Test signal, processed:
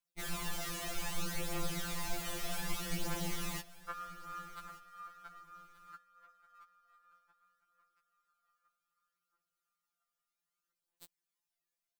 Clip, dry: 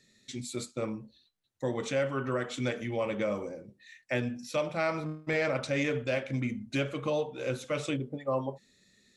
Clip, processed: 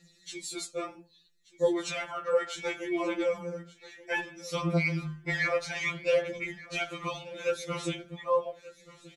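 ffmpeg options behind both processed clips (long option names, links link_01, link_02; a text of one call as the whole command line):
ffmpeg -i in.wav -af "aphaser=in_gain=1:out_gain=1:delay=1.8:decay=0.51:speed=0.64:type=triangular,aecho=1:1:1181|2362:0.112|0.0281,afftfilt=real='re*2.83*eq(mod(b,8),0)':imag='im*2.83*eq(mod(b,8),0)':win_size=2048:overlap=0.75,volume=4dB" out.wav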